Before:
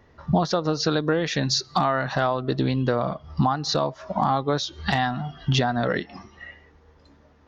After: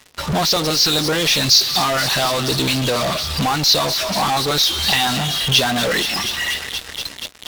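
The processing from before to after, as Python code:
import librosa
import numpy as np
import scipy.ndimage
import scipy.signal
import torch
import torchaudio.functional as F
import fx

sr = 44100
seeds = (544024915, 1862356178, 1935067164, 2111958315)

p1 = fx.low_shelf(x, sr, hz=390.0, db=-11.0)
p2 = fx.filter_lfo_notch(p1, sr, shape='saw_up', hz=7.1, low_hz=380.0, high_hz=2700.0, q=1.0)
p3 = fx.band_shelf(p2, sr, hz=3800.0, db=11.0, octaves=1.7)
p4 = fx.echo_wet_highpass(p3, sr, ms=239, feedback_pct=73, hz=1800.0, wet_db=-20.5)
p5 = fx.fuzz(p4, sr, gain_db=52.0, gate_db=-53.0)
p6 = p4 + F.gain(torch.from_numpy(p5), -6.0).numpy()
y = F.gain(torch.from_numpy(p6), -1.0).numpy()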